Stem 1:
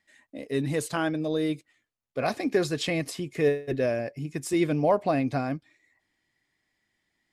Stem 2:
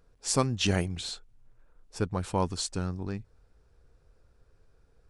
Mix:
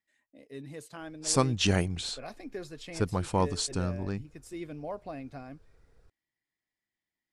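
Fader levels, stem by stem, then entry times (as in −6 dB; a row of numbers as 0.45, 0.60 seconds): −15.5, +1.0 decibels; 0.00, 1.00 seconds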